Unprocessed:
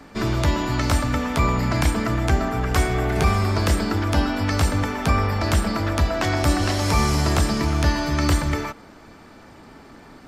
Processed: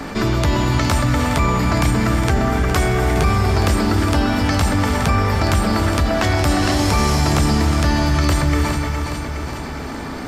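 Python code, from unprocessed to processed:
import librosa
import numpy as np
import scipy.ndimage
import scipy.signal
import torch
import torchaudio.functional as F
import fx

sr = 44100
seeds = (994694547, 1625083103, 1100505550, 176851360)

y = fx.echo_feedback(x, sr, ms=414, feedback_pct=42, wet_db=-12.0)
y = fx.rev_gated(y, sr, seeds[0], gate_ms=360, shape='rising', drr_db=7.0)
y = fx.env_flatten(y, sr, amount_pct=50)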